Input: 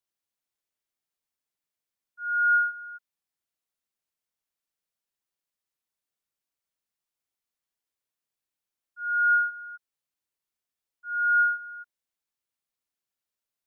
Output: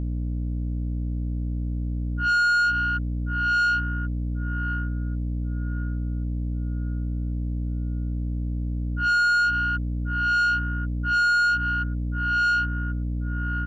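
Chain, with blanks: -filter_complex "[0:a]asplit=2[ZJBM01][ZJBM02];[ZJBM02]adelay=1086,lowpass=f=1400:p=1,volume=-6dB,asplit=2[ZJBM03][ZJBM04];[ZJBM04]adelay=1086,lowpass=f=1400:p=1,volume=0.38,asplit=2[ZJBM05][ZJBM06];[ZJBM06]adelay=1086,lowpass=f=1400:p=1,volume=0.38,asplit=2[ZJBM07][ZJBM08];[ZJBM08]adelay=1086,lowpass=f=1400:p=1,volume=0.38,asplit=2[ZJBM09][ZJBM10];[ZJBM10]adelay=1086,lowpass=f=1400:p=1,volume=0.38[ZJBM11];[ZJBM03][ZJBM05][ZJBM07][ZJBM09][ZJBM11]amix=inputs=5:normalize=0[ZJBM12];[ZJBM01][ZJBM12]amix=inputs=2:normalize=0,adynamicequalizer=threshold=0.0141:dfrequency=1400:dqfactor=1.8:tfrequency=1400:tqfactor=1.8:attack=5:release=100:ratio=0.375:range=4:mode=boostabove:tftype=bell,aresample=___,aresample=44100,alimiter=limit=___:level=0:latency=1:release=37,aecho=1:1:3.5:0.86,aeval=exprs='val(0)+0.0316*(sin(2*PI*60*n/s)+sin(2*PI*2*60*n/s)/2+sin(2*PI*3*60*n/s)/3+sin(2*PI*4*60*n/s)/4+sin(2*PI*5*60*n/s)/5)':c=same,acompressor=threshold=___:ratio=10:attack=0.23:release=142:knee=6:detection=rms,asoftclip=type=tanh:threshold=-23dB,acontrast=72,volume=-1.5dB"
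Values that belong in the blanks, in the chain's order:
22050, -11.5dB, -18dB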